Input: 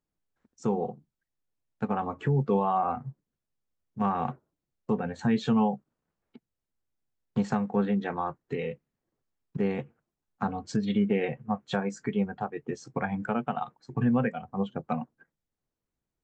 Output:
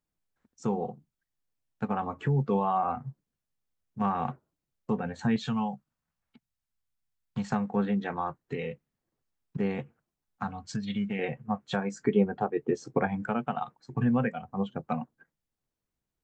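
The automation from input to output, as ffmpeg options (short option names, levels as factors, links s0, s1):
-af "asetnsamples=n=441:p=0,asendcmd='5.36 equalizer g -14.5;7.52 equalizer g -3;10.43 equalizer g -14.5;11.19 equalizer g -2.5;12.05 equalizer g 8;13.07 equalizer g -2',equalizer=f=390:t=o:w=1.4:g=-3"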